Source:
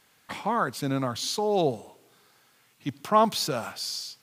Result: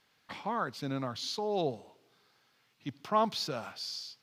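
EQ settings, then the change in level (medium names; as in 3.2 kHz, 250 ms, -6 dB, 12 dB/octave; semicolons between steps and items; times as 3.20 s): resonant high shelf 6.4 kHz -7.5 dB, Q 1.5; -7.5 dB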